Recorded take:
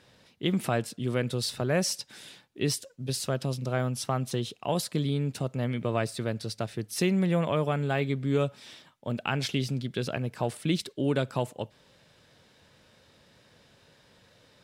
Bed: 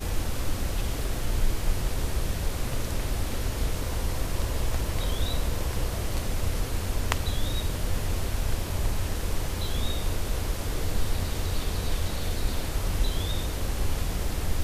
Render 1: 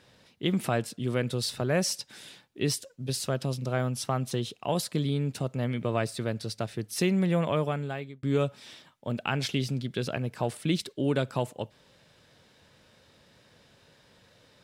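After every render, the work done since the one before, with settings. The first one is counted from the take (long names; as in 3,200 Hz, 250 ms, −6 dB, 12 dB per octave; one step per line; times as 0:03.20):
0:07.58–0:08.23: fade out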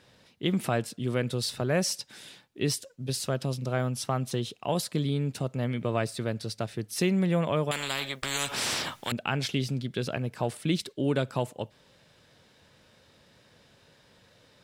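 0:07.71–0:09.12: every bin compressed towards the loudest bin 10 to 1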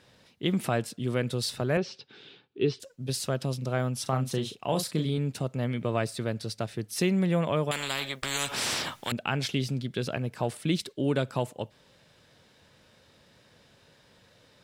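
0:01.77–0:02.80: loudspeaker in its box 100–3,800 Hz, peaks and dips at 200 Hz −4 dB, 410 Hz +9 dB, 610 Hz −9 dB, 1,000 Hz −6 dB, 1,900 Hz −8 dB
0:04.02–0:05.18: double-tracking delay 38 ms −8.5 dB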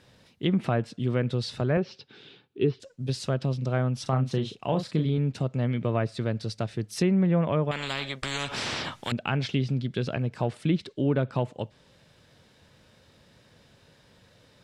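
treble cut that deepens with the level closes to 2,000 Hz, closed at −22 dBFS
low-shelf EQ 220 Hz +5.5 dB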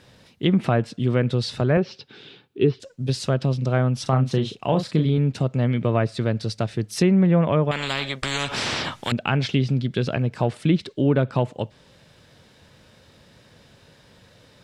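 level +5.5 dB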